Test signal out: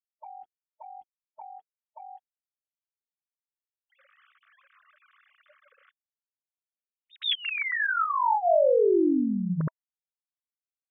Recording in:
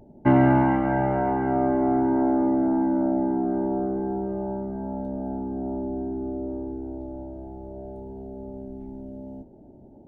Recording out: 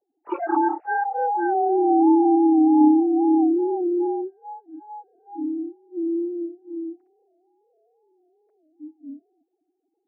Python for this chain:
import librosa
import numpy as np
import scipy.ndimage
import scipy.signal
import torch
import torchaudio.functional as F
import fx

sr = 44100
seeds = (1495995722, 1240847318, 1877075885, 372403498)

y = fx.sine_speech(x, sr)
y = fx.env_lowpass(y, sr, base_hz=1900.0, full_db=-17.5)
y = fx.noise_reduce_blind(y, sr, reduce_db=29)
y = y * librosa.db_to_amplitude(3.5)